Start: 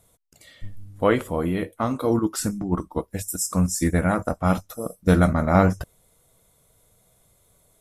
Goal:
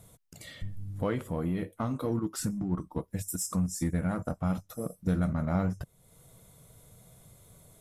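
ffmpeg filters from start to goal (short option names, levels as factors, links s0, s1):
-filter_complex "[0:a]equalizer=f=140:t=o:w=1.5:g=9,acompressor=threshold=0.01:ratio=2,asplit=2[s0][s1];[s1]asoftclip=type=hard:threshold=0.0188,volume=0.355[s2];[s0][s2]amix=inputs=2:normalize=0"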